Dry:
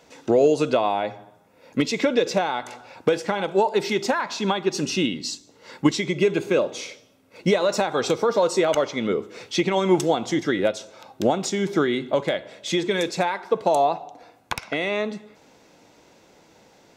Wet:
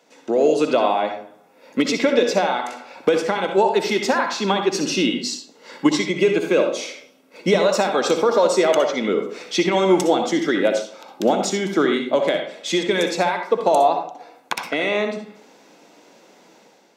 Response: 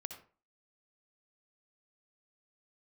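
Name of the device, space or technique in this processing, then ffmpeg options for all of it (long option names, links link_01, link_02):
far laptop microphone: -filter_complex "[1:a]atrim=start_sample=2205[link_01];[0:a][link_01]afir=irnorm=-1:irlink=0,highpass=frequency=190:width=0.5412,highpass=frequency=190:width=1.3066,dynaudnorm=framelen=120:gausssize=7:maxgain=7dB"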